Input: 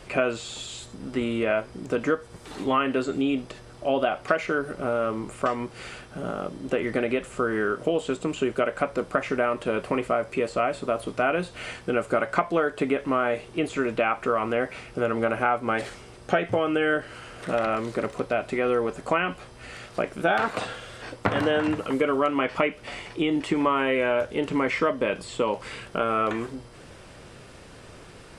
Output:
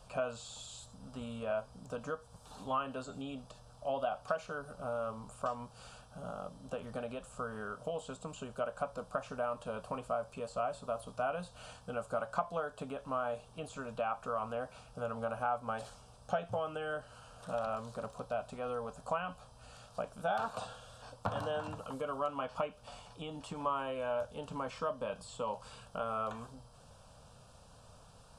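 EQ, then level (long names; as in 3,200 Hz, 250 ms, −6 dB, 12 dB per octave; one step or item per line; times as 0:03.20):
phaser with its sweep stopped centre 840 Hz, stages 4
−8.5 dB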